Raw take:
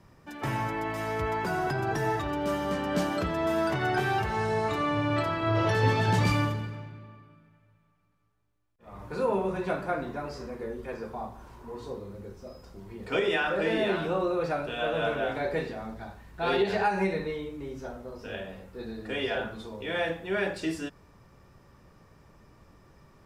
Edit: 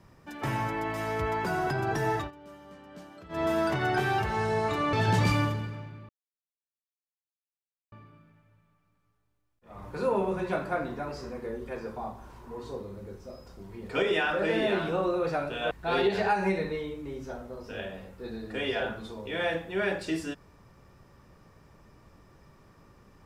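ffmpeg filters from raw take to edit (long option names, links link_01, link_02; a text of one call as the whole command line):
ffmpeg -i in.wav -filter_complex "[0:a]asplit=6[link_01][link_02][link_03][link_04][link_05][link_06];[link_01]atrim=end=2.31,asetpts=PTS-STARTPTS,afade=type=out:start_time=2.16:duration=0.15:curve=qsin:silence=0.105925[link_07];[link_02]atrim=start=2.31:end=3.29,asetpts=PTS-STARTPTS,volume=-19.5dB[link_08];[link_03]atrim=start=3.29:end=4.932,asetpts=PTS-STARTPTS,afade=type=in:duration=0.15:curve=qsin:silence=0.105925[link_09];[link_04]atrim=start=5.928:end=7.09,asetpts=PTS-STARTPTS,afade=type=out:start_time=1.158:duration=0.004:curve=hsin,apad=pad_dur=1.83[link_10];[link_05]atrim=start=7.09:end=14.882,asetpts=PTS-STARTPTS,afade=type=in:duration=0.004:curve=hsin[link_11];[link_06]atrim=start=16.258[link_12];[link_07][link_08][link_09]concat=n=3:v=0:a=1[link_13];[link_10][link_11]concat=n=2:v=0:a=1[link_14];[link_13][link_14]acrossfade=duration=0.004:curve1=hsin:curve2=hsin[link_15];[link_15][link_12]acrossfade=duration=0.004:curve1=hsin:curve2=hsin" out.wav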